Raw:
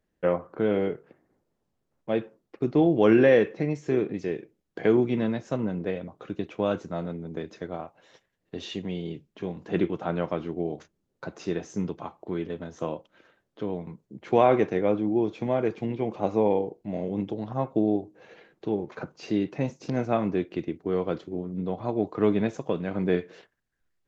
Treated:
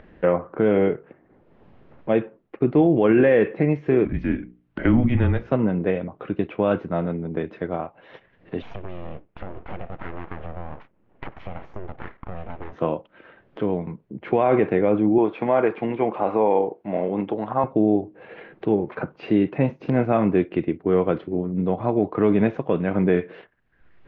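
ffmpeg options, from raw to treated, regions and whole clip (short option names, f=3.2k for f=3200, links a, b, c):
-filter_complex "[0:a]asettb=1/sr,asplit=3[a][b][c];[a]atrim=end=4.054[d];[b]atrim=start=4.05:end=5.52,asetpts=PTS-STARTPTS,afade=t=in:d=0.004:c=qsin,afade=t=out:st=1.466:d=0.004:c=qsin,afreqshift=-130,bandreject=f=60:t=h:w=6,bandreject=f=120:t=h:w=6,bandreject=f=180:t=h:w=6,bandreject=f=240:t=h:w=6,bandreject=f=300:t=h:w=6,bandreject=f=360:t=h:w=6,bandreject=f=420:t=h:w=6,bandreject=f=480:t=h:w=6,bandreject=f=540:t=h:w=6[e];[c]atrim=start=5.516[f];[d][e]acrossfade=d=0.004:c1=hsin:c2=qsin[g];[g][f]acrossfade=d=0.004:c1=qsin:c2=hsin,asettb=1/sr,asplit=3[h][i][j];[h]atrim=end=8.624[k];[i]atrim=start=8.62:end=12.73,asetpts=PTS-STARTPTS,afade=t=in:d=0.004:c=qsin,afade=t=out:st=4.106:d=0.004:c=qsin,equalizer=f=4.6k:t=o:w=0.77:g=-13.5,aeval=exprs='abs(val(0))':c=same,acompressor=threshold=-34dB:ratio=10:attack=3.2:release=140:knee=1:detection=peak[l];[j]atrim=start=12.726[m];[k][l]acrossfade=d=0.004:c1=hsin:c2=qsin[n];[n][m]acrossfade=d=0.004:c1=qsin:c2=hsin,asettb=1/sr,asplit=3[o][p][q];[o]atrim=end=15.184[r];[p]atrim=start=15.18:end=17.64,asetpts=PTS-STARTPTS,afade=t=in:d=0.004:c=qsin,afade=t=out:st=2.456:d=0.004:c=qsin,highpass=f=320:p=1,equalizer=f=1.1k:w=0.85:g=6.5[s];[q]atrim=start=17.636[t];[r][s]acrossfade=d=0.004:c1=hsin:c2=qsin[u];[u][t]acrossfade=d=0.004:c1=qsin:c2=hsin,lowpass=f=2.8k:w=0.5412,lowpass=f=2.8k:w=1.3066,acompressor=mode=upward:threshold=-40dB:ratio=2.5,alimiter=limit=-16dB:level=0:latency=1:release=43,volume=7.5dB"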